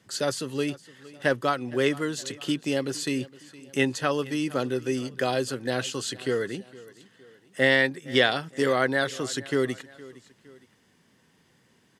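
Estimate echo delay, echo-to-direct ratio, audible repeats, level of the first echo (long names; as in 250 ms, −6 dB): 463 ms, −19.0 dB, 2, −20.0 dB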